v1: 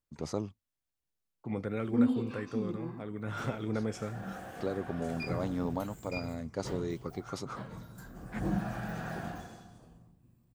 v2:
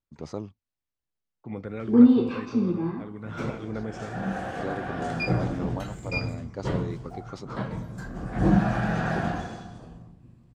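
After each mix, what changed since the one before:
background +12.0 dB; master: add distance through air 82 m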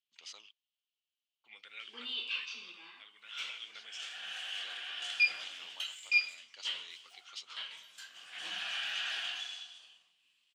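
master: add resonant high-pass 3 kHz, resonance Q 6.3

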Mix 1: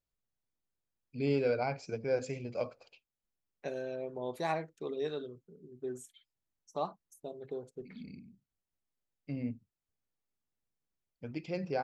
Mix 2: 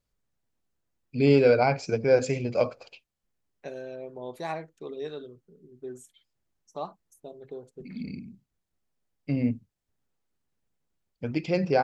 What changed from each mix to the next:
first voice +11.0 dB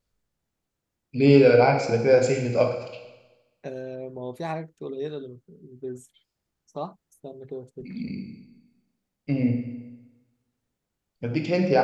second voice: add bass shelf 300 Hz +11 dB; reverb: on, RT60 1.1 s

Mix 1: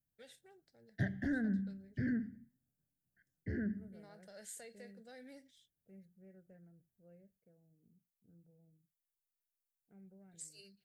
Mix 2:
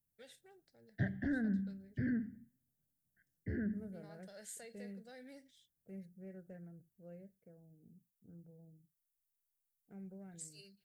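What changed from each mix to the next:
second voice +8.5 dB; background: add distance through air 160 m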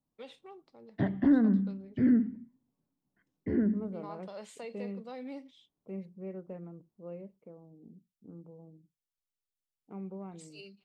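master: remove FFT filter 120 Hz 0 dB, 270 Hz -14 dB, 700 Hz -10 dB, 1.1 kHz -29 dB, 1.6 kHz +4 dB, 2.5 kHz -13 dB, 12 kHz +14 dB

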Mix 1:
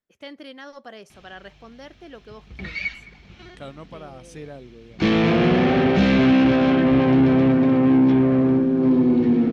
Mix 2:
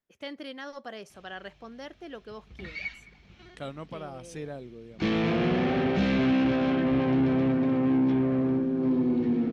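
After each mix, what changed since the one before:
background -8.0 dB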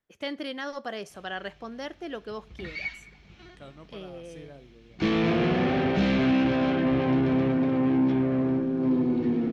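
first voice +5.0 dB; second voice -10.5 dB; reverb: on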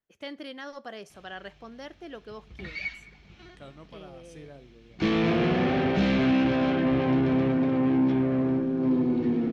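first voice -5.5 dB

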